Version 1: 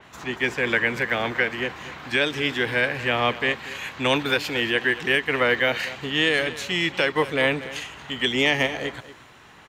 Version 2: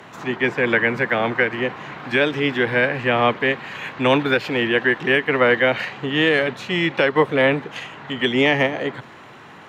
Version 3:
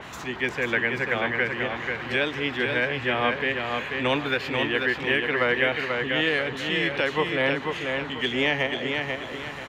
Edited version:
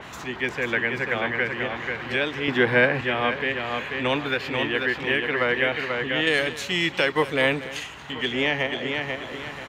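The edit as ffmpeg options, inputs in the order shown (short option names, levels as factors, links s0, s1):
-filter_complex "[2:a]asplit=3[s0][s1][s2];[s0]atrim=end=2.482[s3];[1:a]atrim=start=2.478:end=3.012[s4];[s1]atrim=start=3.008:end=6.272[s5];[0:a]atrim=start=6.268:end=8.112[s6];[s2]atrim=start=8.108[s7];[s3][s4]acrossfade=d=0.004:c1=hsin:c2=hsin[s8];[s8][s5]acrossfade=d=0.004:c1=hsin:c2=hsin[s9];[s9][s6]acrossfade=d=0.004:c1=hsin:c2=hsin[s10];[s10][s7]acrossfade=d=0.004:c1=hsin:c2=hsin"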